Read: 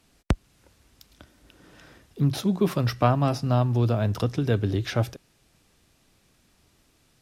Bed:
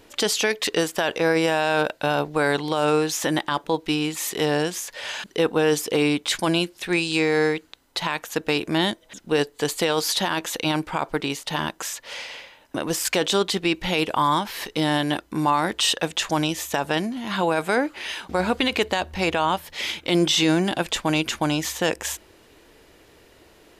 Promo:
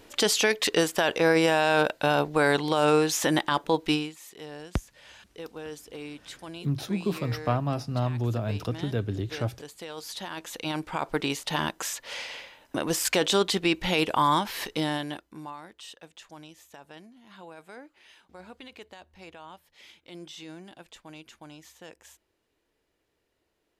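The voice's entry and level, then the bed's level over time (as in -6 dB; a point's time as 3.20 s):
4.45 s, -5.5 dB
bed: 3.94 s -1 dB
4.18 s -19.5 dB
9.73 s -19.5 dB
11.22 s -2 dB
14.67 s -2 dB
15.69 s -24 dB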